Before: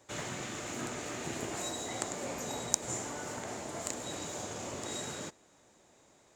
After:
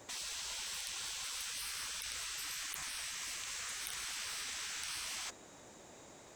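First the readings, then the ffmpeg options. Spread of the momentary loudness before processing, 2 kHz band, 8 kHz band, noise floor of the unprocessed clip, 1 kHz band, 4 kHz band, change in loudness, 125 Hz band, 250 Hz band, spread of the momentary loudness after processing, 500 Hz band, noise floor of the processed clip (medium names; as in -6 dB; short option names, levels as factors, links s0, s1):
7 LU, 0.0 dB, -2.5 dB, -64 dBFS, -9.0 dB, +3.5 dB, -2.0 dB, -18.0 dB, -21.0 dB, 16 LU, -19.5 dB, -57 dBFS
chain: -af "afftfilt=real='re*lt(hypot(re,im),0.00891)':imag='im*lt(hypot(re,im),0.00891)':win_size=1024:overlap=0.75,acrusher=bits=6:mode=log:mix=0:aa=0.000001,volume=2.37"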